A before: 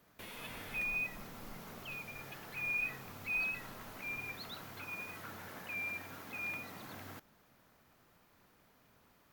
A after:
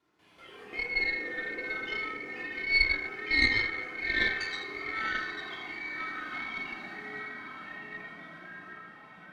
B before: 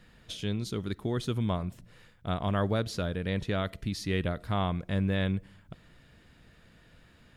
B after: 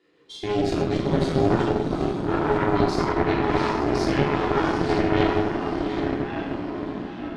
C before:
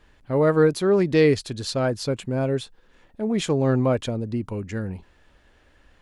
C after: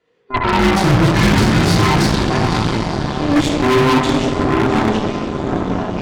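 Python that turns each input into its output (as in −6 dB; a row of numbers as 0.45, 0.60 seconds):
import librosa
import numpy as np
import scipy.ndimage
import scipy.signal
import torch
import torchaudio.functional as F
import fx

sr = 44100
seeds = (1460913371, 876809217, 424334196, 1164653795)

p1 = fx.band_invert(x, sr, width_hz=500)
p2 = scipy.signal.sosfilt(scipy.signal.butter(2, 6800.0, 'lowpass', fs=sr, output='sos'), p1)
p3 = fx.noise_reduce_blind(p2, sr, reduce_db=13)
p4 = scipy.signal.sosfilt(scipy.signal.butter(2, 93.0, 'highpass', fs=sr, output='sos'), p3)
p5 = fx.level_steps(p4, sr, step_db=12)
p6 = p5 + fx.echo_diffused(p5, sr, ms=762, feedback_pct=46, wet_db=-7, dry=0)
p7 = fx.echo_pitch(p6, sr, ms=134, semitones=-3, count=3, db_per_echo=-6.0)
p8 = fx.room_shoebox(p7, sr, seeds[0], volume_m3=650.0, walls='mixed', distance_m=3.2)
p9 = fx.cheby_harmonics(p8, sr, harmonics=(4,), levels_db=(-9,), full_scale_db=-12.5)
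y = F.gain(torch.from_numpy(p9), 4.0).numpy()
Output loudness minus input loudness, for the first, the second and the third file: +9.5, +8.5, +7.5 LU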